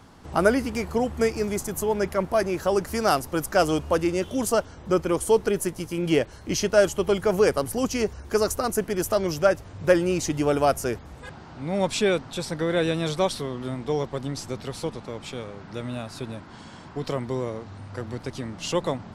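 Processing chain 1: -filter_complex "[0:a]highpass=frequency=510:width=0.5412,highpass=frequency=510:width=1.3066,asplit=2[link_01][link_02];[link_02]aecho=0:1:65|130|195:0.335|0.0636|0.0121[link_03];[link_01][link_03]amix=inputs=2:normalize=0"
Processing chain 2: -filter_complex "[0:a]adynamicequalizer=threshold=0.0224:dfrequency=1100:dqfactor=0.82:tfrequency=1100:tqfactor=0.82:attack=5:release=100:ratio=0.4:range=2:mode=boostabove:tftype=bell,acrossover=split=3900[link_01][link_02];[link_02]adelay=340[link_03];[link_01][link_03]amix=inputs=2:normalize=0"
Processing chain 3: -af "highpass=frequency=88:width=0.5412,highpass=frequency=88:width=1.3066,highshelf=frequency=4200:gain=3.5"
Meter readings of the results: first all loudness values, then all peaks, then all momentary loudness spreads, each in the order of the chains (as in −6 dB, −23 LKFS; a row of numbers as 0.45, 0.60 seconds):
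−28.0, −24.0, −25.0 LKFS; −6.5, −4.0, −4.5 dBFS; 16, 15, 14 LU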